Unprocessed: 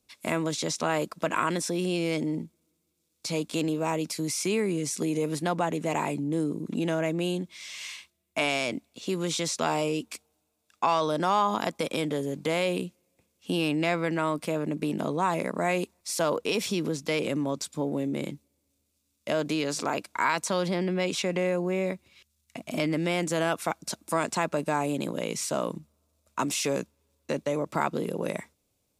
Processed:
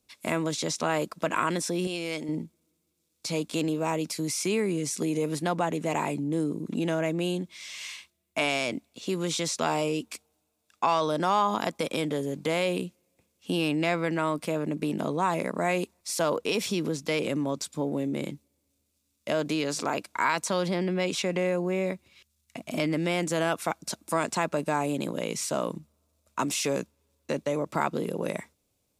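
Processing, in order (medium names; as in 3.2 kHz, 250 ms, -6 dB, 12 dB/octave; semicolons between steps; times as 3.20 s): 1.87–2.29 s: bass shelf 450 Hz -10 dB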